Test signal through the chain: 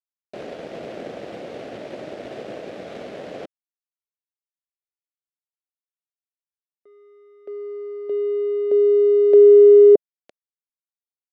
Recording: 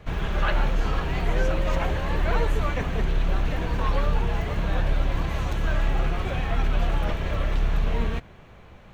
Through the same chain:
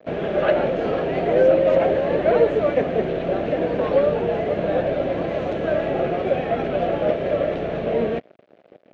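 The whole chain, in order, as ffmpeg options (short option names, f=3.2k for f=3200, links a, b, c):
-af "aeval=exprs='sgn(val(0))*max(abs(val(0))-0.00631,0)':c=same,highpass=270,lowpass=2.8k,lowshelf=f=770:t=q:w=3:g=7.5,volume=3.5dB"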